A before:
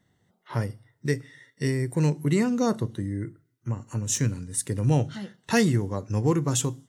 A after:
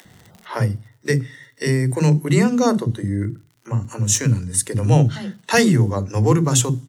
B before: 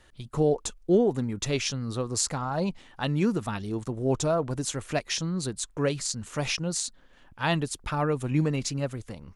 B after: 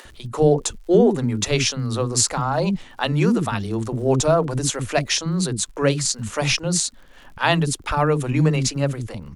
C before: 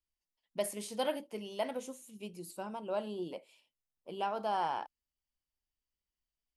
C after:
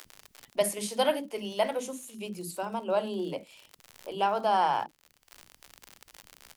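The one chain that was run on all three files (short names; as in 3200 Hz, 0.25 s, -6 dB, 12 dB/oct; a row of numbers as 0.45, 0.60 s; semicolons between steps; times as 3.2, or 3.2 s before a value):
crackle 72/s -51 dBFS; upward compressor, threshold -44 dBFS; bands offset in time highs, lows 50 ms, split 300 Hz; gain +8.5 dB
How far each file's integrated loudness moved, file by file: +7.5, +7.5, +8.0 LU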